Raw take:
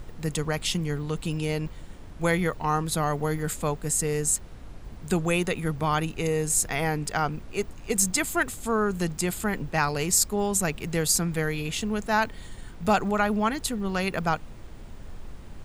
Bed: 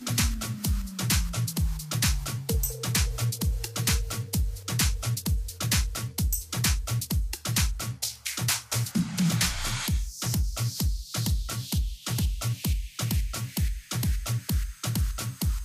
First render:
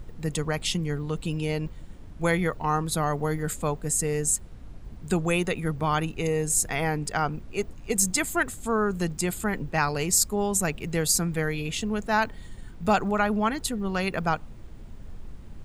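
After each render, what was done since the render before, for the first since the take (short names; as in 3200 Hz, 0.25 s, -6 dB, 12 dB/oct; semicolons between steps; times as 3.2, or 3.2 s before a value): denoiser 6 dB, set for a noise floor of -43 dBFS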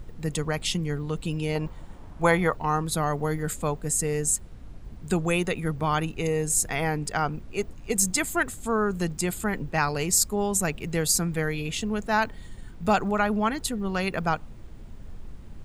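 1.55–2.56 bell 910 Hz +9.5 dB 1.3 oct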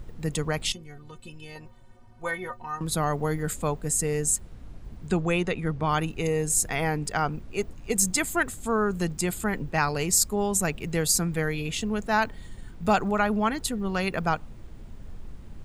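0.72–2.81 metallic resonator 110 Hz, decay 0.25 s, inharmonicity 0.03; 5.07–5.89 air absorption 68 m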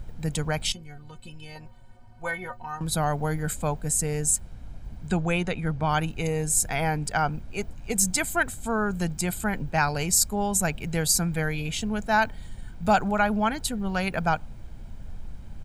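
comb 1.3 ms, depth 42%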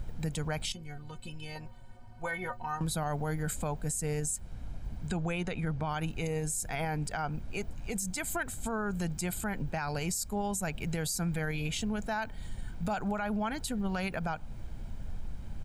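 compressor 2:1, threshold -30 dBFS, peak gain reduction 8.5 dB; limiter -24.5 dBFS, peak gain reduction 9.5 dB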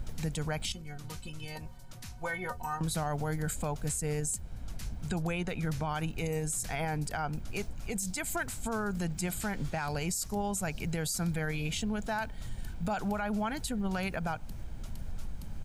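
add bed -22.5 dB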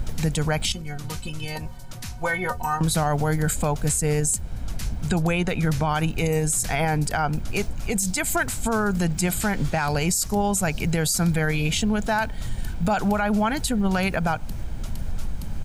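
gain +10.5 dB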